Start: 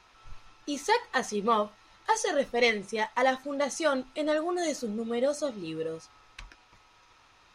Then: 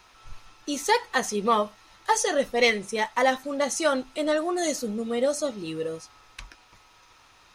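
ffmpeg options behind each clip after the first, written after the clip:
-af "highshelf=f=8.9k:g=12,volume=3dB"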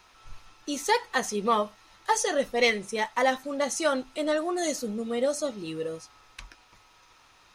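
-af "bandreject=f=50:t=h:w=6,bandreject=f=100:t=h:w=6,volume=-2dB"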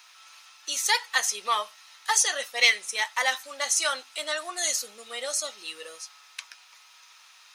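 -af "highpass=660,tiltshelf=f=1.1k:g=-9"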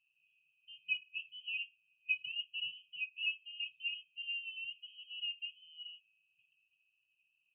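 -af "lowpass=f=2.9k:t=q:w=0.5098,lowpass=f=2.9k:t=q:w=0.6013,lowpass=f=2.9k:t=q:w=0.9,lowpass=f=2.9k:t=q:w=2.563,afreqshift=-3400,aderivative,afftfilt=real='re*(1-between(b*sr/4096,180,2500))':imag='im*(1-between(b*sr/4096,180,2500))':win_size=4096:overlap=0.75,volume=3.5dB"

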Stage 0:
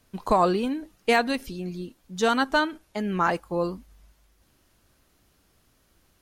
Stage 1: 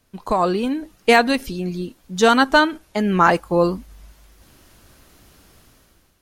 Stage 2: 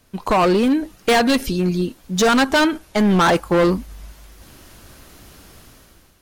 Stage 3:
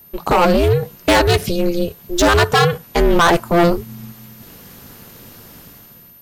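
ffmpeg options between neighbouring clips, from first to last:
-af "dynaudnorm=f=180:g=7:m=13.5dB"
-filter_complex "[0:a]asplit=2[a][b];[b]alimiter=limit=-8.5dB:level=0:latency=1:release=103,volume=-2dB[c];[a][c]amix=inputs=2:normalize=0,volume=13.5dB,asoftclip=hard,volume=-13.5dB,volume=1.5dB"
-af "aeval=exprs='val(0)*sin(2*PI*170*n/s)':c=same,aeval=exprs='val(0)+0.00398*sin(2*PI*13000*n/s)':c=same,volume=5.5dB"

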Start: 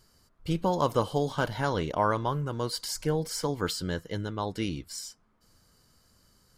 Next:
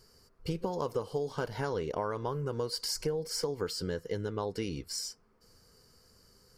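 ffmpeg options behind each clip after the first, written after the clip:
-af "superequalizer=7b=2.51:13b=0.631:14b=1.58,acompressor=threshold=-30dB:ratio=6"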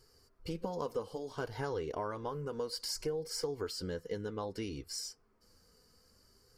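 -af "flanger=delay=2.4:depth=1.7:regen=-47:speed=0.6:shape=sinusoidal"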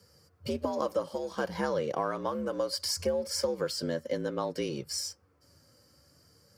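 -filter_complex "[0:a]afreqshift=68,asplit=2[a][b];[b]aeval=exprs='sgn(val(0))*max(abs(val(0))-0.002,0)':c=same,volume=-7dB[c];[a][c]amix=inputs=2:normalize=0,volume=3.5dB"

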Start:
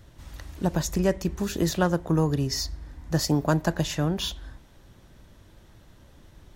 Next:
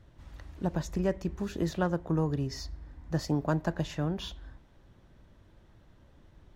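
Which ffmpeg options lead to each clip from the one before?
-af "lowpass=f=2.4k:p=1,volume=-5.5dB"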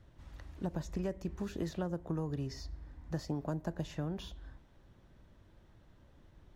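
-filter_complex "[0:a]acrossover=split=730|6600[a][b][c];[a]acompressor=threshold=-30dB:ratio=4[d];[b]acompressor=threshold=-47dB:ratio=4[e];[c]acompressor=threshold=-58dB:ratio=4[f];[d][e][f]amix=inputs=3:normalize=0,volume=-3dB"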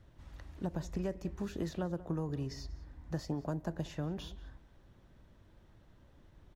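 -filter_complex "[0:a]asplit=2[a][b];[b]adelay=186.6,volume=-18dB,highshelf=f=4k:g=-4.2[c];[a][c]amix=inputs=2:normalize=0"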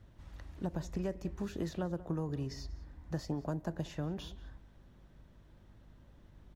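-af "aeval=exprs='val(0)+0.001*(sin(2*PI*50*n/s)+sin(2*PI*2*50*n/s)/2+sin(2*PI*3*50*n/s)/3+sin(2*PI*4*50*n/s)/4+sin(2*PI*5*50*n/s)/5)':c=same"

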